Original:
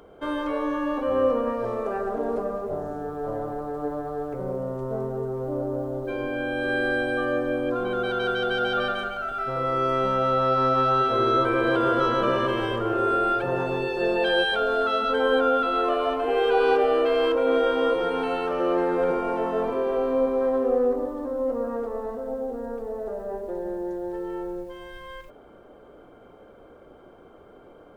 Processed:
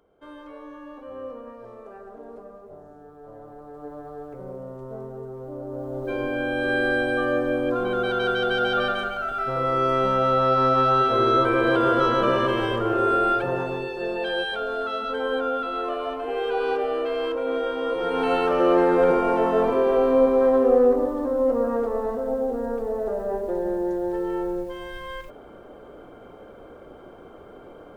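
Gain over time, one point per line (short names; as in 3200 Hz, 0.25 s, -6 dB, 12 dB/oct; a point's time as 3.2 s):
3.26 s -14.5 dB
4.06 s -7 dB
5.6 s -7 dB
6.12 s +2 dB
13.34 s +2 dB
13.97 s -4.5 dB
17.85 s -4.5 dB
18.32 s +5 dB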